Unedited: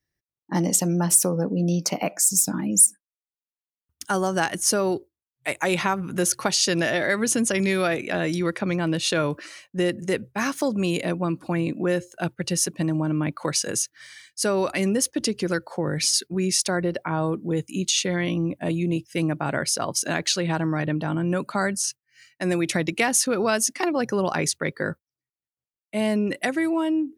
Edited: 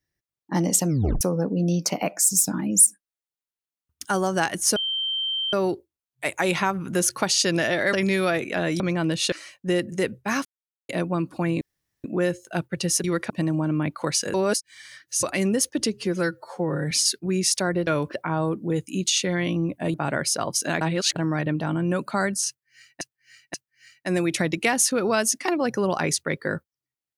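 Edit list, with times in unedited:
0.89 s: tape stop 0.32 s
4.76 s: add tone 3.13 kHz -23.5 dBFS 0.77 s
7.16–7.50 s: delete
8.37–8.63 s: move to 12.71 s
9.15–9.42 s: move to 16.95 s
10.55–10.99 s: mute
11.71 s: insert room tone 0.43 s
13.75–14.64 s: reverse
15.33–15.99 s: stretch 1.5×
18.75–19.35 s: delete
20.22–20.57 s: reverse
21.89–22.42 s: loop, 3 plays

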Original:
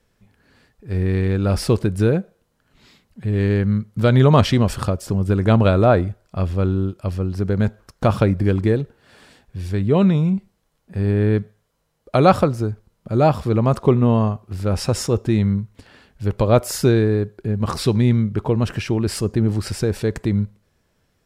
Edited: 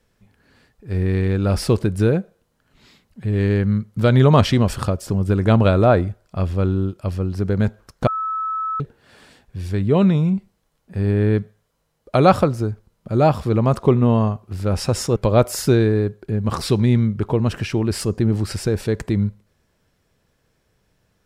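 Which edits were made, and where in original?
8.07–8.80 s: bleep 1.3 kHz -21 dBFS
15.16–16.32 s: delete

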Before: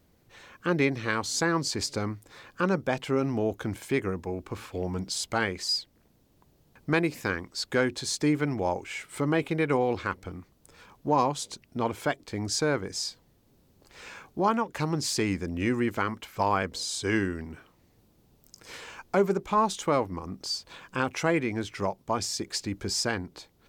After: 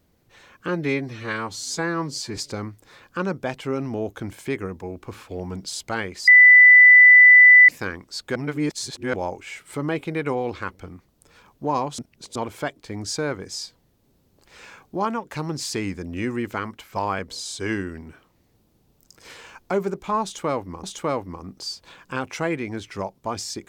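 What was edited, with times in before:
0.68–1.81 s: stretch 1.5×
5.71–7.12 s: bleep 1.99 kHz -6.5 dBFS
7.79–8.57 s: reverse
11.42–11.79 s: reverse
19.67–20.27 s: loop, 2 plays

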